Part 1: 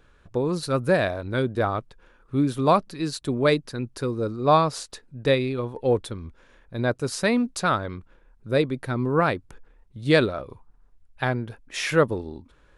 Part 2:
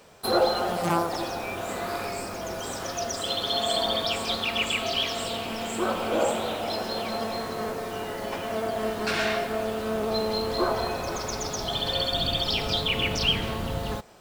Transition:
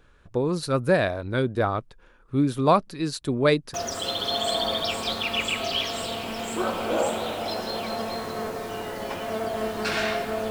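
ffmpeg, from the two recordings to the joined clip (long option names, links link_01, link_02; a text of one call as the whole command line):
ffmpeg -i cue0.wav -i cue1.wav -filter_complex "[0:a]apad=whole_dur=10.5,atrim=end=10.5,atrim=end=3.742[link_01];[1:a]atrim=start=2.958:end=9.72[link_02];[link_01][link_02]acrossfade=duration=0.004:curve1=hsin:curve2=hsin" out.wav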